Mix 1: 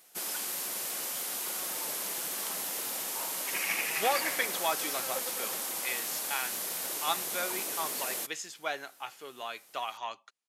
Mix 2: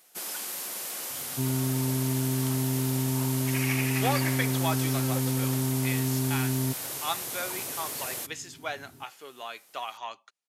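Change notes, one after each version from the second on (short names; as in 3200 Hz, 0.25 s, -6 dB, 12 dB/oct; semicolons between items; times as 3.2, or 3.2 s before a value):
second sound: unmuted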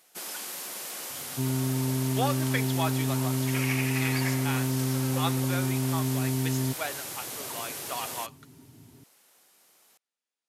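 speech: entry -1.85 s; master: add high shelf 9700 Hz -5 dB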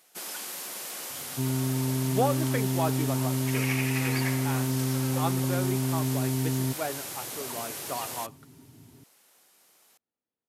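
speech: remove weighting filter ITU-R 468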